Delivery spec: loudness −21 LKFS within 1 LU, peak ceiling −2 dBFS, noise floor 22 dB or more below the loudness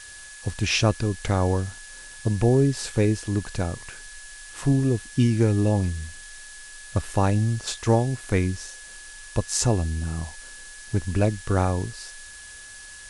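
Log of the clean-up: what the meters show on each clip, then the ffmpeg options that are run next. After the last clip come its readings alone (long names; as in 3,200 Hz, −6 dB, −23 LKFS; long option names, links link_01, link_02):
interfering tone 1,700 Hz; level of the tone −44 dBFS; background noise floor −43 dBFS; target noise floor −47 dBFS; integrated loudness −24.5 LKFS; sample peak −6.0 dBFS; target loudness −21.0 LKFS
→ -af "bandreject=frequency=1700:width=30"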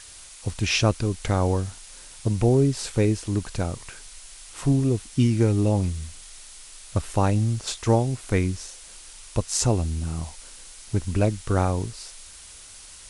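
interfering tone none found; background noise floor −45 dBFS; target noise floor −47 dBFS
→ -af "afftdn=noise_reduction=6:noise_floor=-45"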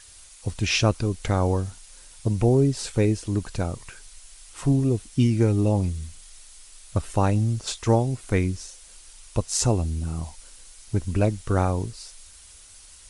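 background noise floor −49 dBFS; integrated loudness −24.5 LKFS; sample peak −6.0 dBFS; target loudness −21.0 LKFS
→ -af "volume=3.5dB"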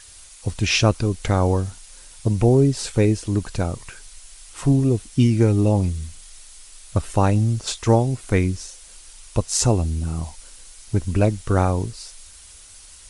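integrated loudness −21.0 LKFS; sample peak −2.5 dBFS; background noise floor −45 dBFS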